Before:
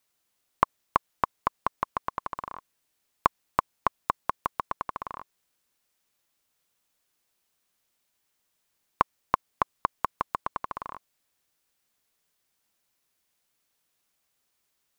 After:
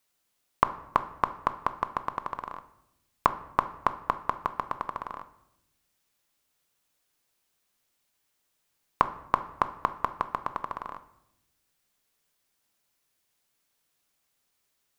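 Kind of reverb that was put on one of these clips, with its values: simulated room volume 250 m³, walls mixed, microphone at 0.33 m

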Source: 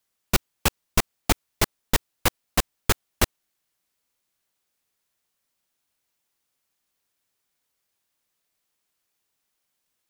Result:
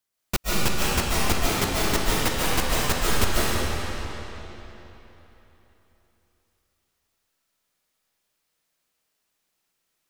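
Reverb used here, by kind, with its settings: algorithmic reverb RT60 3.6 s, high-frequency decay 0.85×, pre-delay 105 ms, DRR -8 dB; trim -5 dB

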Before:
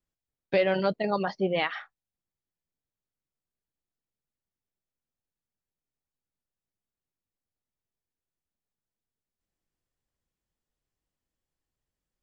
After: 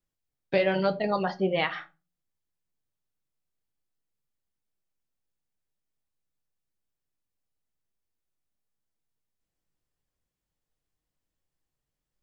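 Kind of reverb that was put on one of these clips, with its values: simulated room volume 120 m³, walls furnished, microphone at 0.5 m

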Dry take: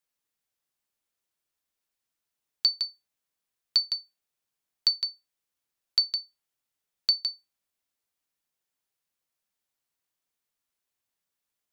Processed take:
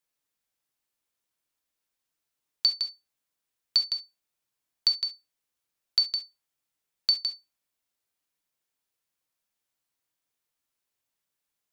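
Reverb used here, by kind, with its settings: gated-style reverb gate 90 ms flat, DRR 6.5 dB

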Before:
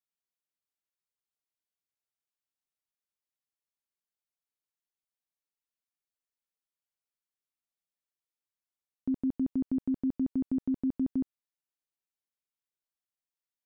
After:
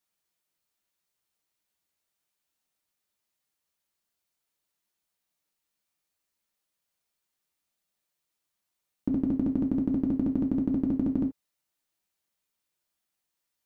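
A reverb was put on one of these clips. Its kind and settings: gated-style reverb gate 100 ms falling, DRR 1.5 dB; trim +8 dB

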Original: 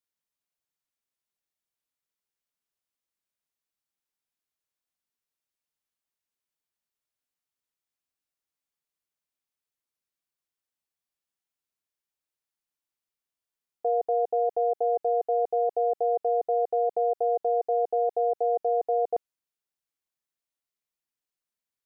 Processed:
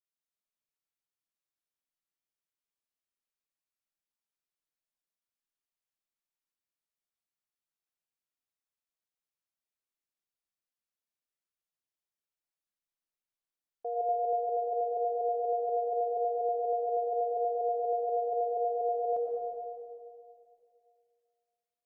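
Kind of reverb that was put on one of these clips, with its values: algorithmic reverb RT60 2.4 s, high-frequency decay 0.75×, pre-delay 65 ms, DRR -2 dB; trim -10 dB

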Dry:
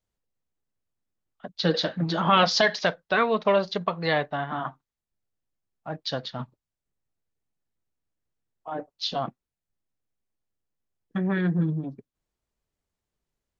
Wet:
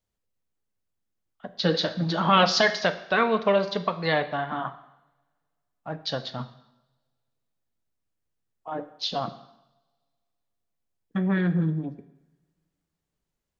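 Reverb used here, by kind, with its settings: two-slope reverb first 0.81 s, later 2.2 s, from -26 dB, DRR 10 dB

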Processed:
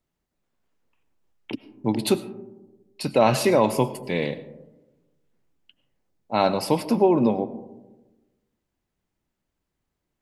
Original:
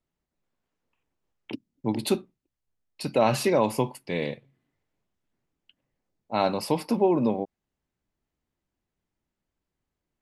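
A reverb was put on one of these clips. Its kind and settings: algorithmic reverb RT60 1.1 s, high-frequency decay 0.25×, pre-delay 60 ms, DRR 15 dB; trim +3.5 dB

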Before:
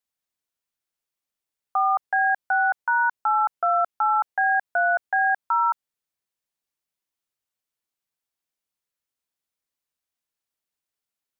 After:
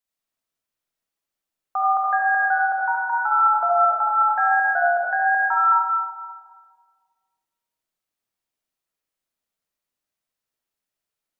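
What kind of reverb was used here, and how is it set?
algorithmic reverb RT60 1.8 s, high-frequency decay 0.3×, pre-delay 25 ms, DRR -3.5 dB; trim -2 dB

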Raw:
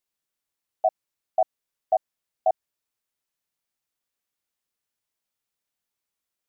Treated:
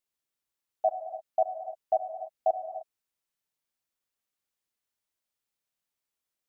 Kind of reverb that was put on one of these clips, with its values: gated-style reverb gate 330 ms flat, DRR 7 dB; trim -3.5 dB

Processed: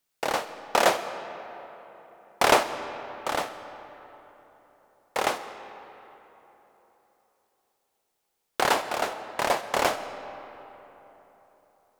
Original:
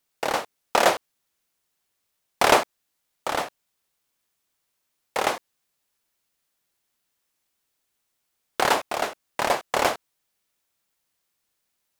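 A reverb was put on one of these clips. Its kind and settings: algorithmic reverb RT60 3.8 s, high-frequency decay 0.55×, pre-delay 50 ms, DRR 11 dB; trim -2 dB

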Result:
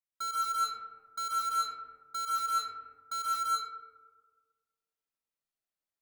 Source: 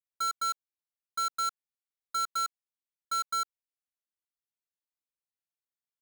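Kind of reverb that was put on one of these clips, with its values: algorithmic reverb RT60 1.6 s, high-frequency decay 0.35×, pre-delay 90 ms, DRR -6.5 dB; trim -5.5 dB

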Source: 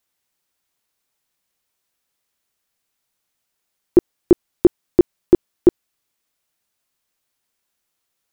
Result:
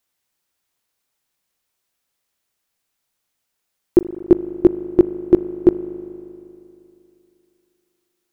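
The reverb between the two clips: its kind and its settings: spring tank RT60 2.8 s, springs 39 ms, chirp 65 ms, DRR 12.5 dB

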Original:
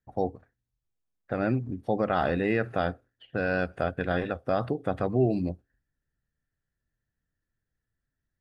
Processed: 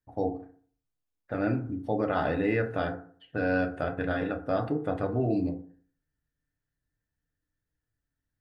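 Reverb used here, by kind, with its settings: FDN reverb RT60 0.48 s, low-frequency decay 1.05×, high-frequency decay 0.4×, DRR 3 dB; trim -3.5 dB

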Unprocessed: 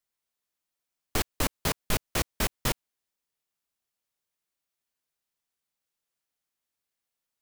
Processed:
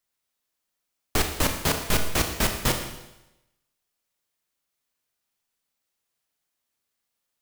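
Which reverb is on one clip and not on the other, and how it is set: Schroeder reverb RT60 0.94 s, combs from 26 ms, DRR 4.5 dB; trim +4 dB

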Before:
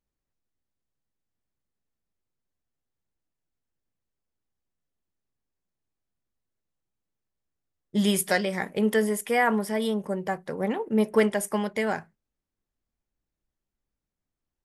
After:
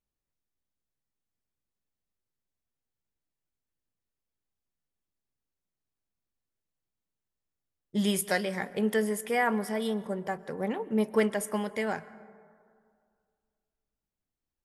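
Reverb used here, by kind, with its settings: plate-style reverb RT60 2.2 s, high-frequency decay 0.35×, pre-delay 105 ms, DRR 17.5 dB; trim -4 dB

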